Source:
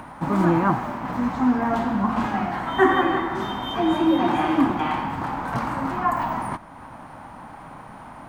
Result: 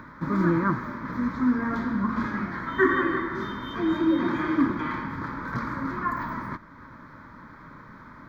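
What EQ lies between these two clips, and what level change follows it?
tone controls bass -3 dB, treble -7 dB; fixed phaser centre 2800 Hz, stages 6; 0.0 dB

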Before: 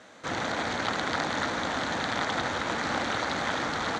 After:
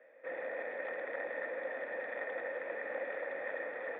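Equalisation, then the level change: vocal tract filter e; HPF 400 Hz 12 dB/oct; air absorption 140 m; +3.5 dB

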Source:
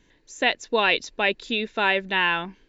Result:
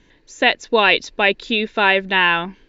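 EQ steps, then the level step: LPF 5700 Hz 12 dB/oct; +6.5 dB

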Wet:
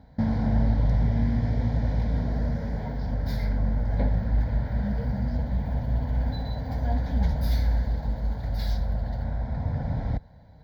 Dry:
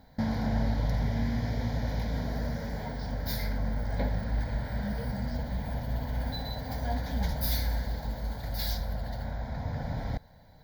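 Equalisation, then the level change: HPF 45 Hz; tilt -2 dB/oct; high shelf 9300 Hz -10 dB; 0.0 dB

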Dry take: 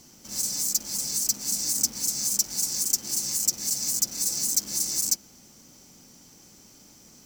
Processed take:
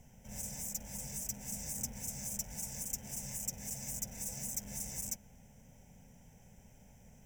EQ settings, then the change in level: tilt -2.5 dB/oct; fixed phaser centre 1200 Hz, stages 6; -3.5 dB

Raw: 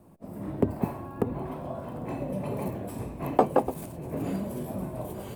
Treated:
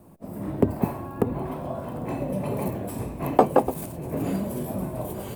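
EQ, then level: high shelf 10000 Hz +5.5 dB; +4.0 dB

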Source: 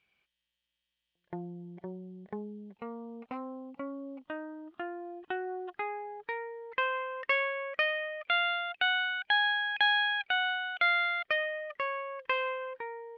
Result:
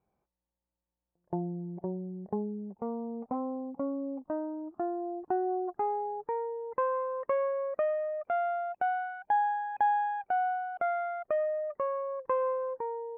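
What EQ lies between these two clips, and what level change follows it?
Chebyshev low-pass 880 Hz, order 3; +7.0 dB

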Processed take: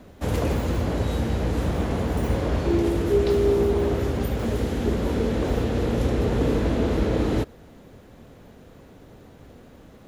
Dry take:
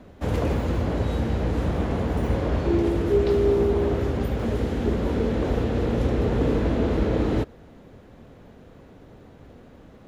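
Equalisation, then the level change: high shelf 5400 Hz +10.5 dB; 0.0 dB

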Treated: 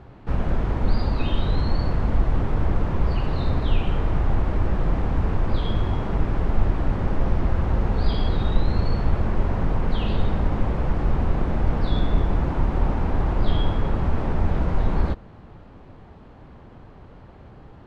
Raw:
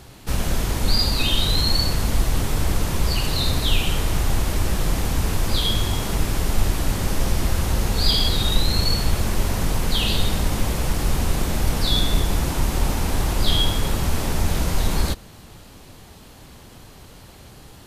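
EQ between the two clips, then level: LPF 1400 Hz 12 dB/oct; 0.0 dB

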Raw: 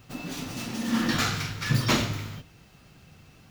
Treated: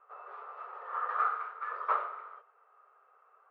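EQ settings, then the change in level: brick-wall FIR high-pass 390 Hz; ladder low-pass 1300 Hz, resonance 80%; +2.5 dB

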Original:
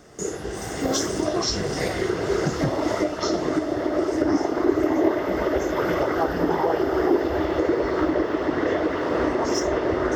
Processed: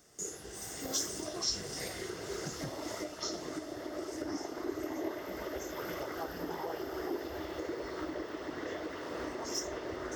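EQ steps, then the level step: pre-emphasis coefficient 0.8; -3.5 dB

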